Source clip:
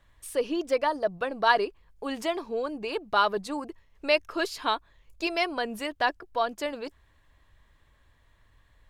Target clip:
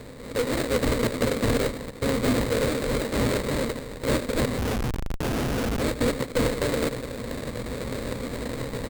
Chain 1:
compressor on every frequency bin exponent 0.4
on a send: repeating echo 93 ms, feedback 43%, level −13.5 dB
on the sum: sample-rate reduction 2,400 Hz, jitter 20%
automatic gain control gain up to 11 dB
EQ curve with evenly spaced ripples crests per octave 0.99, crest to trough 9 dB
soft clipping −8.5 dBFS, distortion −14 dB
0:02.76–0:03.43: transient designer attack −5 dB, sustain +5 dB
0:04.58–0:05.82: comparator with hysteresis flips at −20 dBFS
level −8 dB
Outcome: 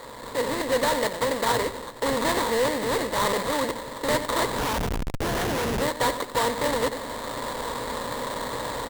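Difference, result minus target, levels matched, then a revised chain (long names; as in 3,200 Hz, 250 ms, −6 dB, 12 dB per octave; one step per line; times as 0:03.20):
sample-rate reduction: distortion −25 dB
compressor on every frequency bin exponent 0.4
on a send: repeating echo 93 ms, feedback 43%, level −13.5 dB
on the sum: sample-rate reduction 970 Hz, jitter 20%
automatic gain control gain up to 11 dB
EQ curve with evenly spaced ripples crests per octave 0.99, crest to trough 9 dB
soft clipping −8.5 dBFS, distortion −13 dB
0:02.76–0:03.43: transient designer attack −5 dB, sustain +5 dB
0:04.58–0:05.82: comparator with hysteresis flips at −20 dBFS
level −8 dB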